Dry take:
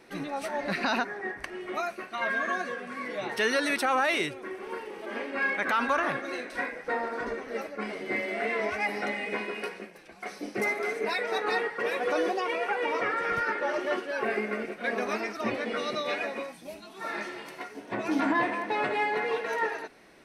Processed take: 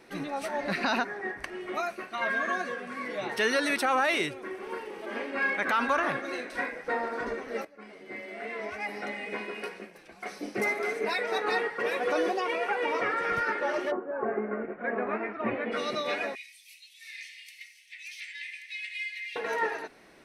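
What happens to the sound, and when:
7.65–10.35 s: fade in, from -16 dB
13.90–15.71 s: low-pass 1.1 kHz -> 2.7 kHz 24 dB/octave
16.35–19.36 s: steep high-pass 2 kHz 72 dB/octave

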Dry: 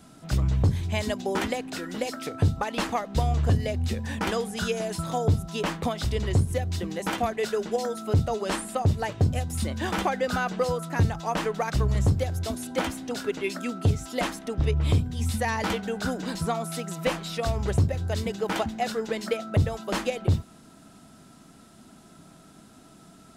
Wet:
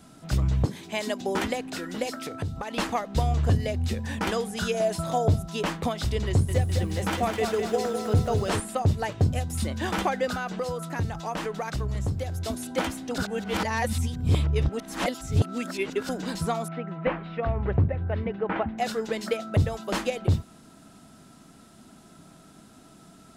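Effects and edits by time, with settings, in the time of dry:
0.65–1.21 s: high-pass 210 Hz 24 dB/octave
2.15–2.75 s: compression 4:1, threshold -29 dBFS
4.74–5.42 s: peaking EQ 640 Hz +9 dB 0.3 oct
6.28–8.60 s: bit-crushed delay 205 ms, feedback 55%, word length 9-bit, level -5.5 dB
10.32–12.46 s: compression 2:1, threshold -29 dBFS
13.18–16.09 s: reverse
16.68–18.78 s: low-pass 2.3 kHz 24 dB/octave

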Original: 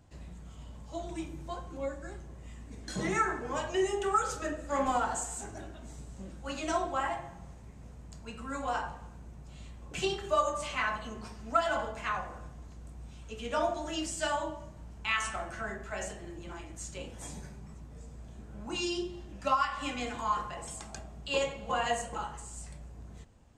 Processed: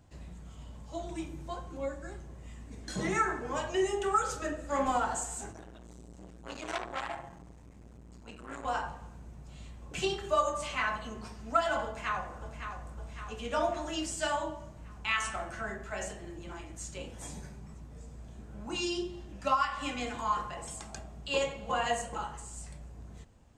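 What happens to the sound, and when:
5.52–8.65 s: transformer saturation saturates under 2.8 kHz
11.85–12.74 s: echo throw 560 ms, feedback 60%, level -8 dB

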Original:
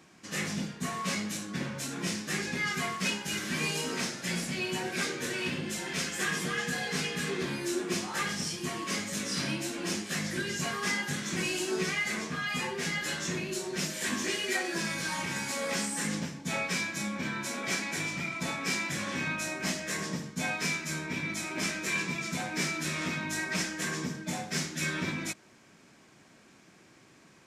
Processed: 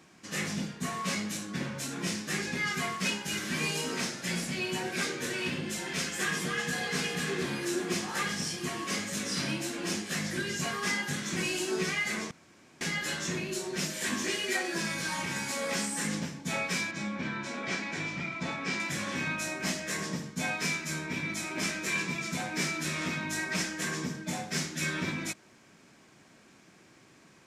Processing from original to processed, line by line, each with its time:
6.24–6.94 s: echo throw 350 ms, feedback 85%, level -10.5 dB
12.31–12.81 s: room tone
16.91–18.80 s: distance through air 110 m

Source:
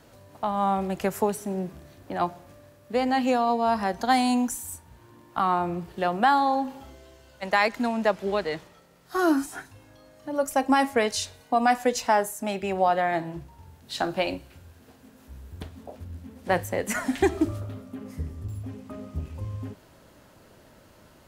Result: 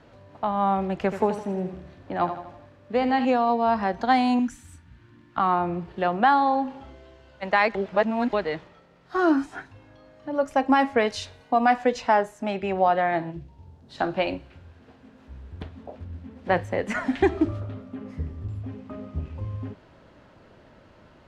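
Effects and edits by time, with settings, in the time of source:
1.01–3.25 s: feedback delay 81 ms, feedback 48%, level -10 dB
4.39–5.38 s: high-order bell 640 Hz -12 dB
7.75–8.33 s: reverse
11.06–11.61 s: peaking EQ 12 kHz +7 dB 1 oct
13.30–13.98 s: peaking EQ 910 Hz -> 2.9 kHz -12 dB 1.8 oct
whole clip: low-pass 3.3 kHz 12 dB/octave; trim +1.5 dB

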